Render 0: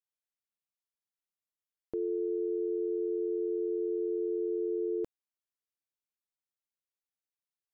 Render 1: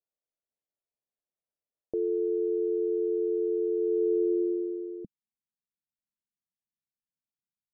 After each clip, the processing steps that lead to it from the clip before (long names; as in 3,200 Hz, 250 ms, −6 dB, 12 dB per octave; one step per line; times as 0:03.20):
low-pass filter sweep 600 Hz → 200 Hz, 0:03.75–0:05.07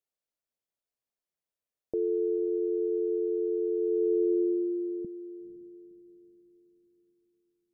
feedback delay with all-pass diffusion 497 ms, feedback 47%, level −13 dB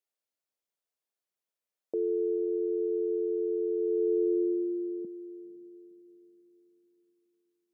high-pass filter 270 Hz 12 dB per octave